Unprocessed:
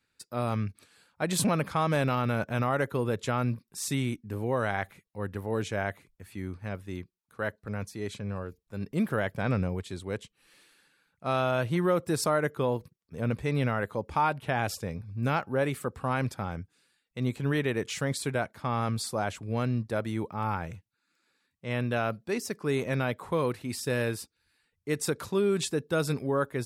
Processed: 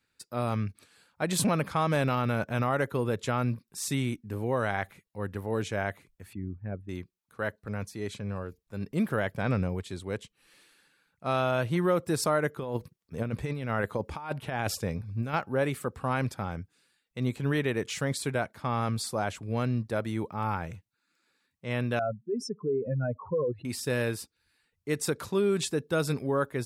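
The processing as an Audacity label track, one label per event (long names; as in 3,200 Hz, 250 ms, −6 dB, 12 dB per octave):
6.330000	6.890000	spectral envelope exaggerated exponent 2
12.580000	15.340000	compressor whose output falls as the input rises −30 dBFS, ratio −0.5
21.990000	23.650000	expanding power law on the bin magnitudes exponent 3.2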